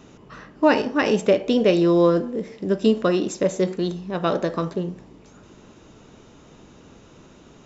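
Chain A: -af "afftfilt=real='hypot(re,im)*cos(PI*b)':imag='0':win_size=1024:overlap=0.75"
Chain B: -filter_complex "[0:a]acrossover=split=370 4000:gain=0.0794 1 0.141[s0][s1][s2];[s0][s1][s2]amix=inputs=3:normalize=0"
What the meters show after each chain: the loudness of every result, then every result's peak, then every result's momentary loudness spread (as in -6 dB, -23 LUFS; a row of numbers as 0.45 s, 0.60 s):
-24.0 LUFS, -25.0 LUFS; -5.0 dBFS, -7.5 dBFS; 12 LU, 13 LU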